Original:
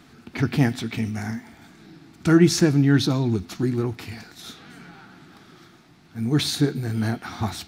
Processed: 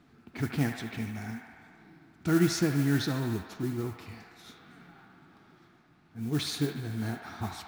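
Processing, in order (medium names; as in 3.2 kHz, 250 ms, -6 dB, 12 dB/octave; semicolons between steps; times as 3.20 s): modulation noise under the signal 20 dB; feedback echo behind a band-pass 74 ms, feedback 80%, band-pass 1.4 kHz, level -5.5 dB; tape noise reduction on one side only decoder only; trim -9 dB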